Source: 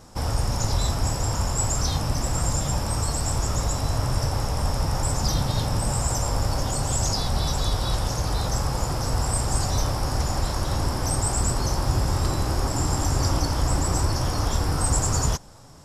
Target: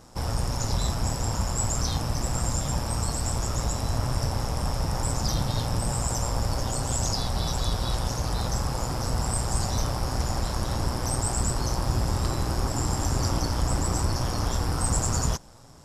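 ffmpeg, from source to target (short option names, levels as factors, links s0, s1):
-af "acontrast=20,tremolo=f=120:d=0.519,volume=0.562"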